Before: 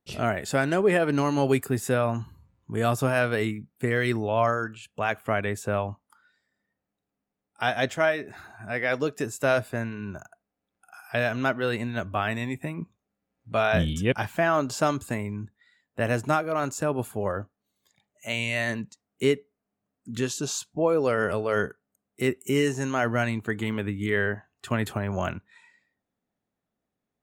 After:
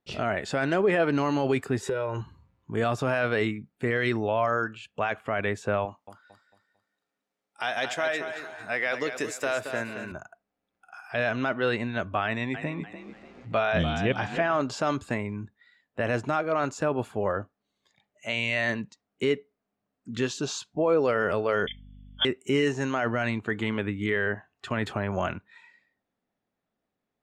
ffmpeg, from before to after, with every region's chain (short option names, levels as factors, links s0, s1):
-filter_complex "[0:a]asettb=1/sr,asplit=3[s0][s1][s2];[s0]atrim=end=1.804[s3];[s1]atrim=start=1.8:end=2.21,asetpts=PTS-STARTPTS,afade=t=in:d=0.004:c=qsin,afade=t=out:st=0.406:d=0.004:c=qsin,equalizer=f=400:t=o:w=0.59:g=8,aecho=1:1:2.1:0.72,atrim=end_sample=18081,acompressor=threshold=0.0562:ratio=16:attack=3.2:release=140:knee=1:detection=peak[s4];[s2]atrim=start=2.206[s5];[s3][s4]acrossfade=d=0.004:c1=hsin:c2=qsin[s6];[s6][s5]acrossfade=d=0.004:c1=qsin:c2=hsin,asettb=1/sr,asplit=3[s7][s8][s9];[s7]atrim=end=5.854[s10];[s8]atrim=start=5.85:end=10.12,asetpts=PTS-STARTPTS,afade=t=in:d=0.004:c=qsin,afade=t=out:st=4.266:d=0.004:c=qsin,aemphasis=mode=production:type=bsi,acompressor=threshold=0.0631:ratio=5:attack=3.2:release=140:knee=1:detection=peak,aecho=1:1:224|448|672|896:0.355|0.128|0.046|0.0166,atrim=end_sample=188307[s11];[s9]atrim=start=10.116[s12];[s10][s11]acrossfade=d=0.004:c1=hsin:c2=qsin[s13];[s13][s12]acrossfade=d=0.004:c1=qsin:c2=hsin,asettb=1/sr,asplit=3[s14][s15][s16];[s14]atrim=end=12.254[s17];[s15]atrim=start=12.25:end=14.62,asetpts=PTS-STARTPTS,afade=t=in:d=0.004:c=qsin,afade=t=out:st=2.366:d=0.004:c=qsin,lowpass=7500,acompressor=mode=upward:threshold=0.0355:ratio=2.5:attack=3.2:release=140:knee=2.83:detection=peak,asplit=5[s18][s19][s20][s21][s22];[s19]adelay=293,afreqshift=38,volume=0.266[s23];[s20]adelay=586,afreqshift=76,volume=0.0955[s24];[s21]adelay=879,afreqshift=114,volume=0.0347[s25];[s22]adelay=1172,afreqshift=152,volume=0.0124[s26];[s18][s23][s24][s25][s26]amix=inputs=5:normalize=0,atrim=end_sample=104517[s27];[s16]atrim=start=14.616[s28];[s17][s27]acrossfade=d=0.004:c1=hsin:c2=qsin[s29];[s29][s28]acrossfade=d=0.004:c1=qsin:c2=hsin,asettb=1/sr,asplit=3[s30][s31][s32];[s30]atrim=end=21.674[s33];[s31]atrim=start=21.67:end=22.25,asetpts=PTS-STARTPTS,afade=t=in:d=0.004:c=qsin,afade=t=out:st=0.576:d=0.004:c=qsin,lowpass=f=3100:t=q:w=0.5098,lowpass=f=3100:t=q:w=0.6013,lowpass=f=3100:t=q:w=0.9,lowpass=f=3100:t=q:w=2.563,afreqshift=-3600,aecho=1:1:3.5:0.97,atrim=end_sample=25578,aeval=exprs='val(0)+0.00562*(sin(2*PI*50*n/s)+sin(2*PI*2*50*n/s)/2+sin(2*PI*3*50*n/s)/3+sin(2*PI*4*50*n/s)/4+sin(2*PI*5*50*n/s)/5)':c=same[s34];[s32]atrim=start=22.246[s35];[s33][s34]acrossfade=d=0.004:c1=hsin:c2=qsin[s36];[s36][s35]acrossfade=d=0.004:c1=qsin:c2=hsin,lowpass=4600,equalizer=f=78:w=0.34:g=-5,alimiter=limit=0.133:level=0:latency=1:release=17,volume=1.33"